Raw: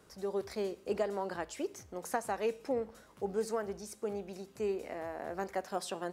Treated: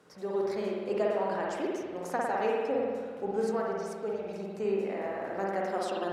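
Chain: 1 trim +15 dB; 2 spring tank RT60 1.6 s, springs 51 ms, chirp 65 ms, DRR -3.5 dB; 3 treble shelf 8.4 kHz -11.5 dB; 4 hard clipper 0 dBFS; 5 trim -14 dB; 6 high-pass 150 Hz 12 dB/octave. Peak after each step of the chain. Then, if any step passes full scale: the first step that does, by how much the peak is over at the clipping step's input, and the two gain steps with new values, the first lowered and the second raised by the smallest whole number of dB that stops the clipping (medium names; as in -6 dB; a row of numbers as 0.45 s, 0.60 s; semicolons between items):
-3.0 dBFS, -3.0 dBFS, -3.0 dBFS, -3.0 dBFS, -17.0 dBFS, -18.0 dBFS; nothing clips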